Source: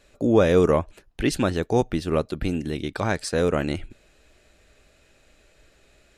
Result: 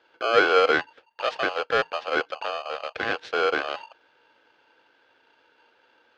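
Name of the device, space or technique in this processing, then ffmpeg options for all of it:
ring modulator pedal into a guitar cabinet: -af "aeval=exprs='val(0)*sgn(sin(2*PI*920*n/s))':channel_layout=same,highpass=96,equalizer=frequency=120:width_type=q:width=4:gain=-6,equalizer=frequency=190:width_type=q:width=4:gain=-9,equalizer=frequency=480:width_type=q:width=4:gain=8,equalizer=frequency=1000:width_type=q:width=4:gain=-7,equalizer=frequency=1600:width_type=q:width=4:gain=8,lowpass=frequency=4100:width=0.5412,lowpass=frequency=4100:width=1.3066,volume=-4.5dB"

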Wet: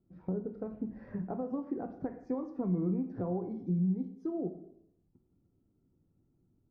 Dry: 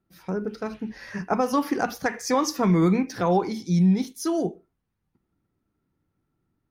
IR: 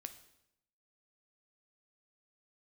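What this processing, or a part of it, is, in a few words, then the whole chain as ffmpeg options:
television next door: -filter_complex "[0:a]acompressor=threshold=-36dB:ratio=4,lowpass=490[link_01];[1:a]atrim=start_sample=2205[link_02];[link_01][link_02]afir=irnorm=-1:irlink=0,volume=8dB"

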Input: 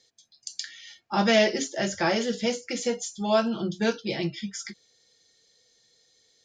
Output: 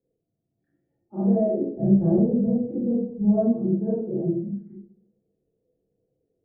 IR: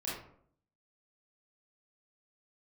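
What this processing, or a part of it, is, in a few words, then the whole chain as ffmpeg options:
next room: -filter_complex "[0:a]lowpass=frequency=510:width=0.5412,lowpass=frequency=510:width=1.3066[link_01];[1:a]atrim=start_sample=2205[link_02];[link_01][link_02]afir=irnorm=-1:irlink=0,asplit=3[link_03][link_04][link_05];[link_03]afade=type=out:start_time=1.76:duration=0.02[link_06];[link_04]bass=frequency=250:gain=12,treble=frequency=4000:gain=13,afade=type=in:start_time=1.76:duration=0.02,afade=type=out:start_time=3.51:duration=0.02[link_07];[link_05]afade=type=in:start_time=3.51:duration=0.02[link_08];[link_06][link_07][link_08]amix=inputs=3:normalize=0"

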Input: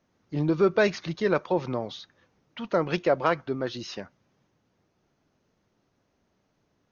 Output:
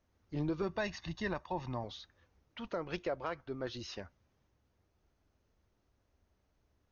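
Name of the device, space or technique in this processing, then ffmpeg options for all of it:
car stereo with a boomy subwoofer: -filter_complex "[0:a]asettb=1/sr,asplit=3[link_01][link_02][link_03];[link_01]atrim=end=0.624[link_04];[link_02]atrim=start=0.62:end=1.84,asetpts=PTS-STARTPTS,afade=type=in:duration=0.004:curve=qsin,afade=type=out:start_time=1.216:duration=0.004:curve=qsin,aecho=1:1:1.1:0.65,atrim=end_sample=53802[link_05];[link_03]atrim=start=1.836[link_06];[link_04][link_05]acrossfade=duration=0.004:curve1=hsin:curve2=qsin[link_07];[link_07][link_06]acrossfade=duration=0.004:curve1=qsin:curve2=hsin,lowshelf=frequency=100:width_type=q:width=1.5:gain=12.5,alimiter=limit=-18.5dB:level=0:latency=1:release=478,volume=-7dB"

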